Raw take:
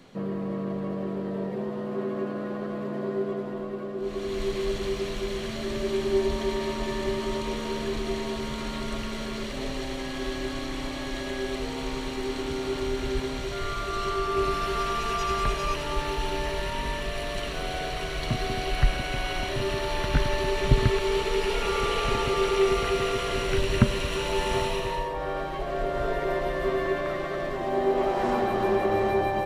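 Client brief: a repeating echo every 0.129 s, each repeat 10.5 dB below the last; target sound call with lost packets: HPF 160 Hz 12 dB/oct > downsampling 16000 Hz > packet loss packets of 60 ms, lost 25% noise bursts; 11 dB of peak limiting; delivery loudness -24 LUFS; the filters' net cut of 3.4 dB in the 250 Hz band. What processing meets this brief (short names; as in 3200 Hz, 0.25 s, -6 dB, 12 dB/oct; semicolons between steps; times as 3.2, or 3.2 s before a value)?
bell 250 Hz -4 dB; limiter -17.5 dBFS; HPF 160 Hz 12 dB/oct; feedback echo 0.129 s, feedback 30%, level -10.5 dB; downsampling 16000 Hz; packet loss packets of 60 ms, lost 25% noise bursts; gain +6 dB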